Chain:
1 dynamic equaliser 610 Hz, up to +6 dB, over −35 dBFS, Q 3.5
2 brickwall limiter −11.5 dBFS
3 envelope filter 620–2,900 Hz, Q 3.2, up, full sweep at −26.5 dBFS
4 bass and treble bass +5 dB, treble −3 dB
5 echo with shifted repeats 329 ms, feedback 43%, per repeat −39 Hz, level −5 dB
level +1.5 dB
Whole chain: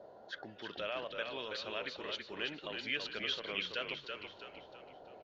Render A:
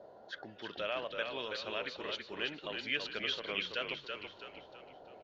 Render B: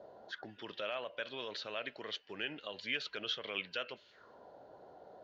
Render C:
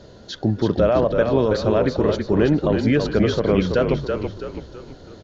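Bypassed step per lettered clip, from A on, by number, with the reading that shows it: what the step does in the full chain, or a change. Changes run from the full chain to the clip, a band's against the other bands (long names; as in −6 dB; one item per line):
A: 2, change in integrated loudness +1.5 LU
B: 5, echo-to-direct ratio −4.0 dB to none audible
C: 3, 4 kHz band −20.5 dB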